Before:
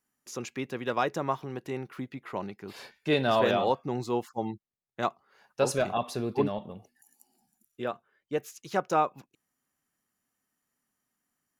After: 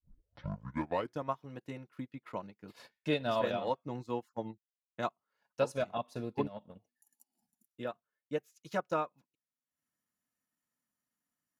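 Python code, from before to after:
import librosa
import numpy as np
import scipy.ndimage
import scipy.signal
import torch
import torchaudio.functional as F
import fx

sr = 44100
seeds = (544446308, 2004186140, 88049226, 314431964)

y = fx.tape_start_head(x, sr, length_s=1.29)
y = fx.transient(y, sr, attack_db=4, sustain_db=-12)
y = fx.notch_comb(y, sr, f0_hz=390.0)
y = F.gain(torch.from_numpy(y), -7.0).numpy()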